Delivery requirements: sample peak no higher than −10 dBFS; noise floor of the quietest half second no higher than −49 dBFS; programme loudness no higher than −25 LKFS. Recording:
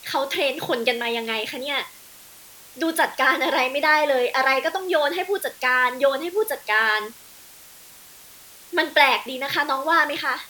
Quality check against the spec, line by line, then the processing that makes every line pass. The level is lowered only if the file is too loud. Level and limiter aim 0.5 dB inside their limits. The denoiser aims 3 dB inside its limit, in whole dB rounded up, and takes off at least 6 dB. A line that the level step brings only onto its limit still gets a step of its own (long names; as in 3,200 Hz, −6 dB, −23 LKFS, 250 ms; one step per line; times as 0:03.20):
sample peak −2.0 dBFS: out of spec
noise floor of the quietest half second −46 dBFS: out of spec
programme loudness −21.0 LKFS: out of spec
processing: level −4.5 dB
brickwall limiter −10.5 dBFS